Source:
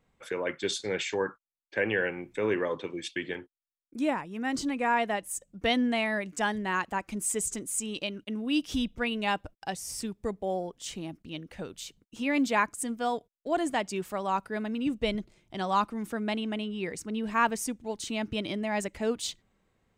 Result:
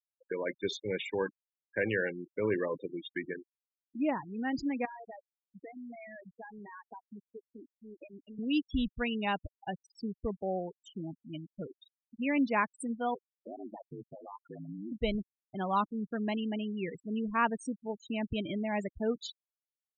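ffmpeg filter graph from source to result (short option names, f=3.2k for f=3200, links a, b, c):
-filter_complex "[0:a]asettb=1/sr,asplit=3[a][b][c];[a]atrim=end=4.854[d];[b]atrim=start=4.85:end=8.39,asetpts=PTS-STARTPTS,afade=t=in:d=0.004:c=qsin,afade=t=out:st=3.536:d=0.004:c=qsin,acompressor=threshold=-36dB:ratio=16:attack=3.2:release=140:knee=1:detection=peak,highpass=260,lowpass=3.2k[e];[c]atrim=start=8.386[f];[d][e]acrossfade=d=0.004:c1=hsin:c2=qsin[g];[g][f]acrossfade=d=0.004:c1=qsin:c2=hsin,asettb=1/sr,asplit=3[h][i][j];[h]atrim=end=13.144[k];[i]atrim=start=13.14:end=14.92,asetpts=PTS-STARTPTS,afade=t=in:d=0.004:c=qsin,afade=t=out:st=1.776:d=0.004:c=qsin,aeval=exprs='val(0)*sin(2*PI*52*n/s)':c=same,acompressor=threshold=-37dB:ratio=4:attack=3.2:release=140:knee=1:detection=peak[l];[j]atrim=start=14.916[m];[k][l]acrossfade=d=0.004:c1=hsin:c2=qsin[n];[n][m]acrossfade=d=0.004:c1=qsin:c2=hsin,highshelf=f=10k:g=-8.5,afftfilt=real='re*gte(hypot(re,im),0.0355)':imag='im*gte(hypot(re,im),0.0355)':win_size=1024:overlap=0.75,lowshelf=f=160:g=7,volume=-3.5dB"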